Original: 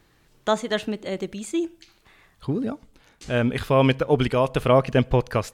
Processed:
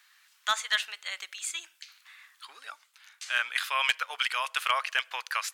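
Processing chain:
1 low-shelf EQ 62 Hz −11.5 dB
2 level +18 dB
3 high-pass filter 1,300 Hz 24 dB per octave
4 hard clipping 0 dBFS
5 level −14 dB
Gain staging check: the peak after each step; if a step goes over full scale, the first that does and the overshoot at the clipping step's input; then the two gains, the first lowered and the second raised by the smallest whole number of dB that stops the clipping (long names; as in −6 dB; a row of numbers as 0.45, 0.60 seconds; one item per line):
−6.5, +11.5, +8.0, 0.0, −14.0 dBFS
step 2, 8.0 dB
step 2 +10 dB, step 5 −6 dB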